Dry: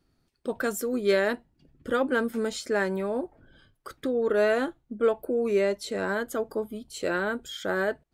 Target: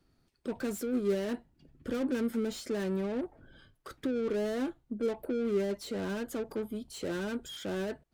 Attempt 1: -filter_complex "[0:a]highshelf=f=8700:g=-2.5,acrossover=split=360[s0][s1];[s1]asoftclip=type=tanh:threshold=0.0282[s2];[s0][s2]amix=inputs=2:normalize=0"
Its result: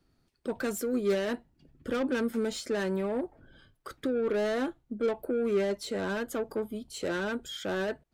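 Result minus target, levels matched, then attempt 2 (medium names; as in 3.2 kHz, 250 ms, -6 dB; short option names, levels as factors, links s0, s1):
saturation: distortion -4 dB
-filter_complex "[0:a]highshelf=f=8700:g=-2.5,acrossover=split=360[s0][s1];[s1]asoftclip=type=tanh:threshold=0.00944[s2];[s0][s2]amix=inputs=2:normalize=0"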